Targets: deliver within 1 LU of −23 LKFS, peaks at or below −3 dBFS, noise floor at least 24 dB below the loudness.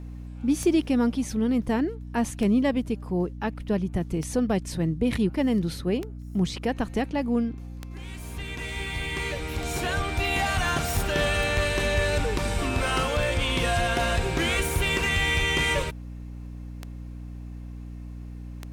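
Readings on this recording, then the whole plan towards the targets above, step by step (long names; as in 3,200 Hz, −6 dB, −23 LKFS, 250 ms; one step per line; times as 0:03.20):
number of clicks 11; mains hum 60 Hz; hum harmonics up to 300 Hz; level of the hum −36 dBFS; integrated loudness −26.0 LKFS; sample peak −11.5 dBFS; target loudness −23.0 LKFS
→ click removal
hum removal 60 Hz, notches 5
level +3 dB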